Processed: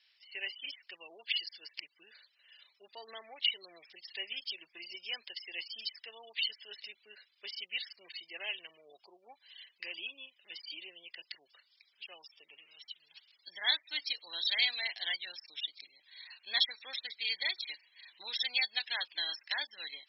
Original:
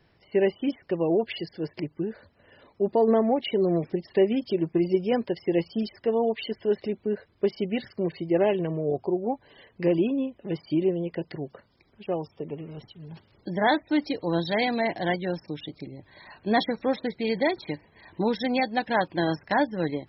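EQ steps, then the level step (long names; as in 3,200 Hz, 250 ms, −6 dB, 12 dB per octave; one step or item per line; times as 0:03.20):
flat-topped band-pass 4,100 Hz, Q 1.2
high-frequency loss of the air 53 metres
+7.0 dB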